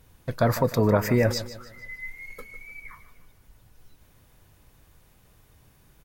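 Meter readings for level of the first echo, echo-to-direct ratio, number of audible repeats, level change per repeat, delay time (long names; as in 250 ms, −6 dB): −14.0 dB, −13.0 dB, 3, −8.0 dB, 151 ms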